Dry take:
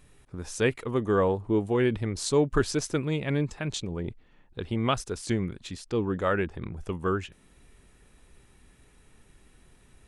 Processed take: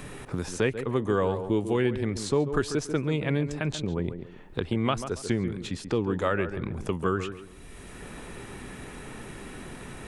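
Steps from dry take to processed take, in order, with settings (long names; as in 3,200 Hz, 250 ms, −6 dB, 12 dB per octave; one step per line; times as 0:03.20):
on a send: tape delay 138 ms, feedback 27%, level −9 dB, low-pass 1,200 Hz
on the sum: multiband upward and downward compressor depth 70%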